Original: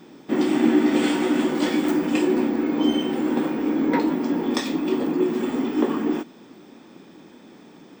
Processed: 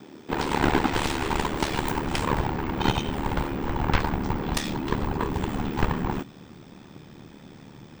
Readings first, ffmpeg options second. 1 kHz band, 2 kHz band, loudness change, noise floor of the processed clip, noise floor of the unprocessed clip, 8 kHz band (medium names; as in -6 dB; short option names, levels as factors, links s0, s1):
+3.5 dB, +1.0 dB, -5.0 dB, -48 dBFS, -48 dBFS, +1.0 dB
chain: -af "aeval=exprs='0.447*(cos(1*acos(clip(val(0)/0.447,-1,1)))-cos(1*PI/2))+0.2*(cos(7*acos(clip(val(0)/0.447,-1,1)))-cos(7*PI/2))':c=same,aeval=exprs='val(0)*sin(2*PI*37*n/s)':c=same,asubboost=boost=7.5:cutoff=110,volume=0.708"